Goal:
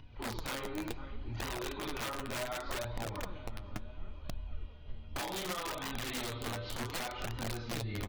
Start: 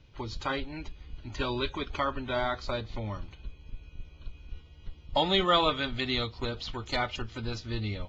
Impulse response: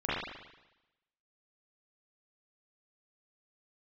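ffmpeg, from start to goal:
-filter_complex "[1:a]atrim=start_sample=2205,asetrate=74970,aresample=44100[s0];[0:a][s0]afir=irnorm=-1:irlink=0,alimiter=limit=0.178:level=0:latency=1:release=373,lowpass=f=1900:p=1,aecho=1:1:497|994|1491|1988|2485:0.112|0.0617|0.0339|0.0187|0.0103,acompressor=threshold=0.0316:ratio=16,aeval=exprs='(mod(22.4*val(0)+1,2)-1)/22.4':c=same,flanger=delay=1:depth=8.9:regen=39:speed=0.68:shape=sinusoidal,acompressor=mode=upward:threshold=0.00501:ratio=2.5"

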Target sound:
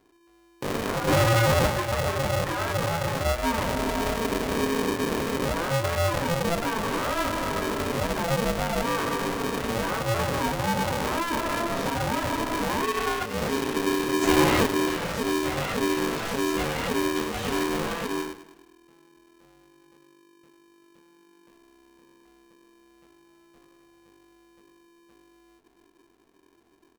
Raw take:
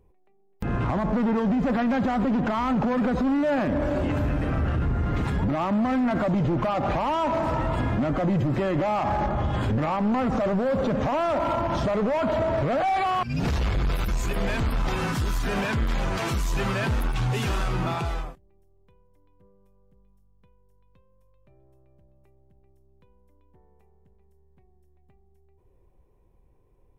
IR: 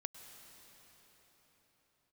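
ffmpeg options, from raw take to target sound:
-filter_complex "[0:a]asplit=3[s0][s1][s2];[s0]afade=t=out:st=14.21:d=0.02[s3];[s1]acontrast=89,afade=t=in:st=14.21:d=0.02,afade=t=out:st=14.63:d=0.02[s4];[s2]afade=t=in:st=14.63:d=0.02[s5];[s3][s4][s5]amix=inputs=3:normalize=0,flanger=delay=20:depth=7.1:speed=0.12,asplit=3[s6][s7][s8];[s6]afade=t=out:st=1.07:d=0.02[s9];[s7]aeval=exprs='0.141*sin(PI/2*2.24*val(0)/0.141)':c=same,afade=t=in:st=1.07:d=0.02,afade=t=out:st=1.66:d=0.02[s10];[s8]afade=t=in:st=1.66:d=0.02[s11];[s9][s10][s11]amix=inputs=3:normalize=0,aecho=1:1:104|208|312|416|520:0.188|0.104|0.057|0.0313|0.0172,aeval=exprs='val(0)*sgn(sin(2*PI*340*n/s))':c=same"

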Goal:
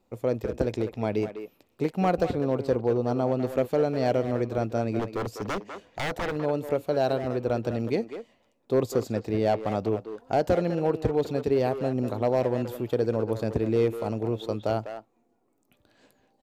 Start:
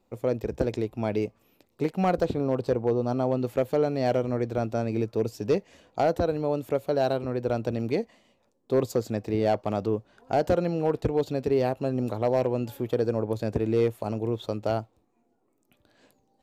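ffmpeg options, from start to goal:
-filter_complex "[0:a]asettb=1/sr,asplit=3[s0][s1][s2];[s0]atrim=end=4.994[s3];[s1]atrim=start=4.99:end=6.36,asetpts=PTS-STARTPTS,afade=t=in:d=0.004:c=qsin,afade=t=out:st=1.366:d=0.004:c=qsin,aeval=exprs='0.0631*(abs(mod(val(0)/0.0631+3,4)-2)-1)':c=same[s4];[s2]atrim=start=6.356[s5];[s3][s4]acrossfade=d=0.004:c1=hsin:c2=qsin[s6];[s6][s5]acrossfade=d=0.004:c1=qsin:c2=hsin,asplit=2[s7][s8];[s8]adelay=200,highpass=300,lowpass=3400,asoftclip=type=hard:threshold=0.0708,volume=0.398[s9];[s7][s9]amix=inputs=2:normalize=0"

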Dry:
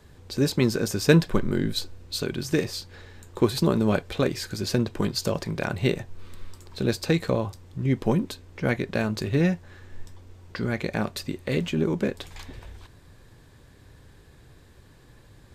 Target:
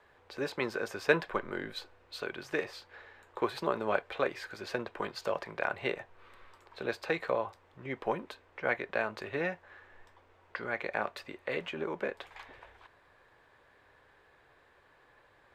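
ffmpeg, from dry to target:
-filter_complex "[0:a]acrossover=split=500 2700:gain=0.0708 1 0.1[s0][s1][s2];[s0][s1][s2]amix=inputs=3:normalize=0"

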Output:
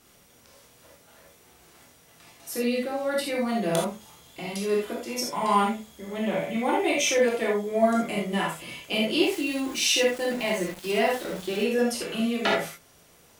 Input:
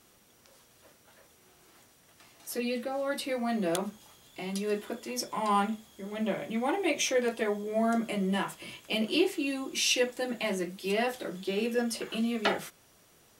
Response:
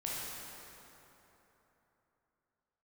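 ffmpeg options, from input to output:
-filter_complex "[1:a]atrim=start_sample=2205,atrim=end_sample=3969[s0];[0:a][s0]afir=irnorm=-1:irlink=0,asettb=1/sr,asplit=3[s1][s2][s3];[s1]atrim=end=9.234[s4];[s2]atrim=start=9.23:end=11.64,asetpts=PTS-STARTPTS,afade=t=in:d=0.004:c=qsin,afade=t=out:st=2.406:d=0.004:c=qsin,aeval=exprs='val(0)*gte(abs(val(0)),0.0075)':c=same[s5];[s3]atrim=start=11.636[s6];[s4][s5]acrossfade=d=0.004:c1=hsin:c2=qsin[s7];[s7][s6]acrossfade=d=0.004:c1=qsin:c2=hsin,volume=1.88"

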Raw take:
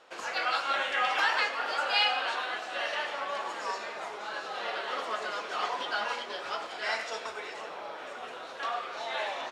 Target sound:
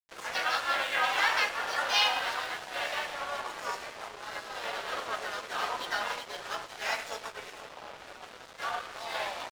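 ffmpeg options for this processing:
-filter_complex "[0:a]asplit=2[s0][s1];[s1]asetrate=55563,aresample=44100,atempo=0.793701,volume=0.631[s2];[s0][s2]amix=inputs=2:normalize=0,aeval=exprs='sgn(val(0))*max(abs(val(0))-0.00891,0)':c=same"

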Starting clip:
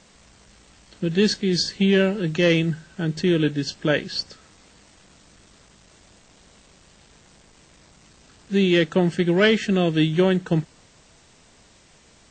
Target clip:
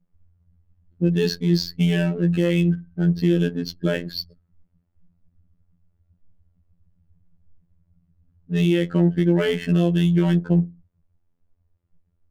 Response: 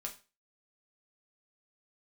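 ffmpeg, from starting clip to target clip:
-filter_complex "[0:a]lowshelf=f=260:g=9,asplit=2[s0][s1];[1:a]atrim=start_sample=2205[s2];[s1][s2]afir=irnorm=-1:irlink=0,volume=0.562[s3];[s0][s3]amix=inputs=2:normalize=0,afftdn=nr=27:nf=-30,adynamicsmooth=sensitivity=7.5:basefreq=1600,afftfilt=real='hypot(re,im)*cos(PI*b)':imag='0':win_size=2048:overlap=0.75,alimiter=limit=0.501:level=0:latency=1:release=125,volume=0.841"

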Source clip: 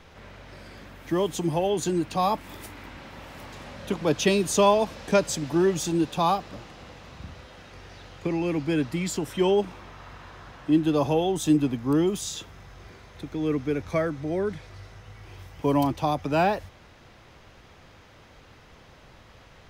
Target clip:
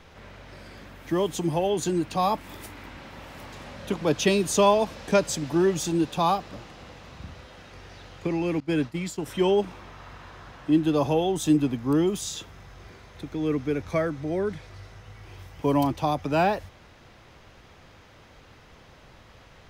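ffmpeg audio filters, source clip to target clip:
-filter_complex "[0:a]asettb=1/sr,asplit=3[s0][s1][s2];[s0]atrim=end=8.604[s3];[s1]atrim=start=8.6:end=9.26,asetpts=PTS-STARTPTS,afade=t=in:d=0.004:c=qsin,afade=t=out:st=0.656:d=0.004:c=qsin,agate=range=0.0224:threshold=0.0631:ratio=3:detection=peak[s4];[s2]atrim=start=9.256[s5];[s3][s4]acrossfade=d=0.004:c1=hsin:c2=qsin[s6];[s6][s5]acrossfade=d=0.004:c1=qsin:c2=hsin"

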